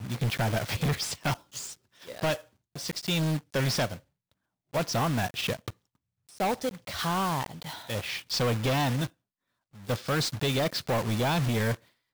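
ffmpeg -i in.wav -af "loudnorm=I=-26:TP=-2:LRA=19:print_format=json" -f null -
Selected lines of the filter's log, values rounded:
"input_i" : "-29.4",
"input_tp" : "-22.0",
"input_lra" : "2.0",
"input_thresh" : "-39.8",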